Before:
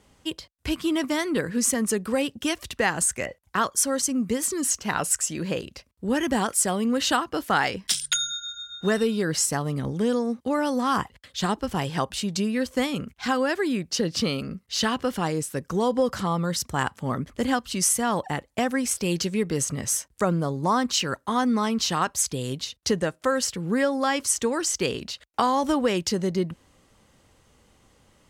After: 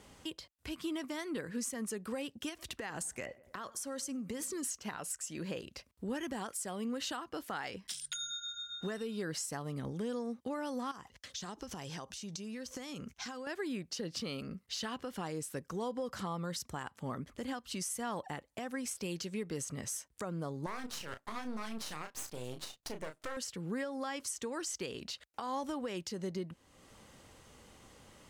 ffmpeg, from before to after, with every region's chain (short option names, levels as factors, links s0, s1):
-filter_complex "[0:a]asettb=1/sr,asplit=3[s0][s1][s2];[s0]atrim=end=2.494[s3];[s1]atrim=start=2.49:end=4.64,asetpts=PTS-STARTPTS,afade=t=in:d=0.004:c=qsin,afade=t=out:st=2.146:d=0.004:c=qsin,acompressor=threshold=0.0501:ratio=4:attack=3.2:release=140:knee=1:detection=peak,asplit=2[s4][s5];[s5]adelay=98,lowpass=f=1500:p=1,volume=0.0891,asplit=2[s6][s7];[s7]adelay=98,lowpass=f=1500:p=1,volume=0.54,asplit=2[s8][s9];[s9]adelay=98,lowpass=f=1500:p=1,volume=0.54,asplit=2[s10][s11];[s11]adelay=98,lowpass=f=1500:p=1,volume=0.54[s12];[s4][s6][s8][s10][s12]amix=inputs=5:normalize=0,atrim=end_sample=94815[s13];[s2]atrim=start=4.636[s14];[s3][s13]acrossfade=d=0.004:c1=hsin:c2=qsin[s15];[s15][s14]acrossfade=d=0.004:c1=qsin:c2=hsin,asettb=1/sr,asplit=3[s16][s17][s18];[s16]atrim=end=10.914[s19];[s17]atrim=start=10.91:end=13.47,asetpts=PTS-STARTPTS,afade=t=in:d=0.004:c=qsin,afade=t=out:st=2.556:d=0.004:c=qsin,equalizer=f=6000:t=o:w=0.52:g=11.5,acompressor=threshold=0.0251:ratio=16:attack=3.2:release=140:knee=1:detection=peak[s20];[s18]atrim=start=13.466[s21];[s19][s20]acrossfade=d=0.004:c1=hsin:c2=qsin[s22];[s22][s21]acrossfade=d=0.004:c1=qsin:c2=hsin,asettb=1/sr,asplit=3[s23][s24][s25];[s23]atrim=end=20.664[s26];[s24]atrim=start=20.66:end=23.37,asetpts=PTS-STARTPTS,afade=t=in:d=0.004:c=qsin,afade=t=out:st=2.706:d=0.004:c=qsin,aeval=exprs='max(val(0),0)':c=same,asplit=2[s27][s28];[s28]adelay=32,volume=0.376[s29];[s27][s29]amix=inputs=2:normalize=0,atrim=end_sample=119511[s30];[s25]atrim=start=23.366[s31];[s26][s30]acrossfade=d=0.004:c1=hsin:c2=qsin[s32];[s32][s31]acrossfade=d=0.004:c1=qsin:c2=hsin,lowshelf=f=140:g=-4.5,acompressor=threshold=0.00316:ratio=2,alimiter=level_in=2.24:limit=0.0631:level=0:latency=1:release=135,volume=0.447,volume=1.33"